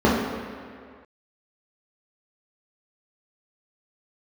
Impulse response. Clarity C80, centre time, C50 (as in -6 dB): 2.5 dB, 96 ms, 0.0 dB